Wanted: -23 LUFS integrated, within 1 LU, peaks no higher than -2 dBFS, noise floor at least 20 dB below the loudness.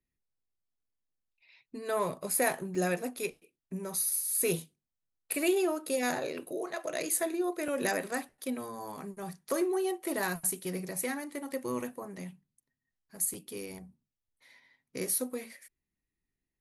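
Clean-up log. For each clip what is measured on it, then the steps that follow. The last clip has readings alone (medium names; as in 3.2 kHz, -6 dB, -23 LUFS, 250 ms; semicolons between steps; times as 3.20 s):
dropouts 3; longest dropout 3.2 ms; loudness -33.0 LUFS; peak level -12.5 dBFS; loudness target -23.0 LUFS
-> interpolate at 2.75/7.68/13.34 s, 3.2 ms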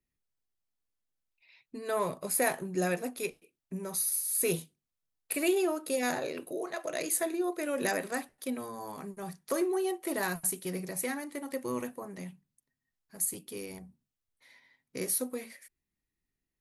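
dropouts 0; loudness -33.0 LUFS; peak level -12.5 dBFS; loudness target -23.0 LUFS
-> trim +10 dB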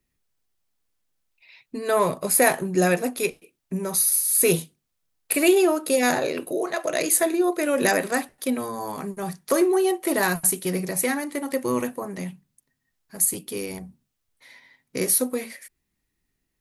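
loudness -23.0 LUFS; peak level -2.5 dBFS; noise floor -78 dBFS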